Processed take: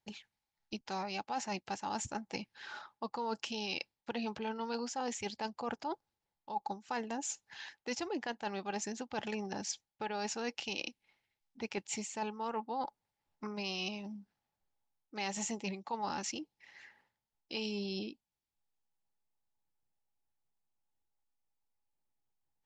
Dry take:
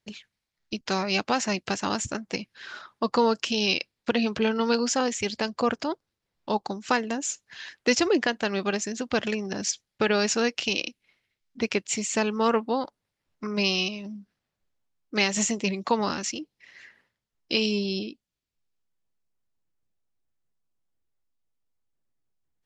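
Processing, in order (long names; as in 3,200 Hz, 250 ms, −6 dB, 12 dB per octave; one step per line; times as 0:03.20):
parametric band 840 Hz +15 dB 0.26 octaves
reversed playback
downward compressor 6 to 1, threshold −28 dBFS, peak gain reduction 16 dB
reversed playback
level −7 dB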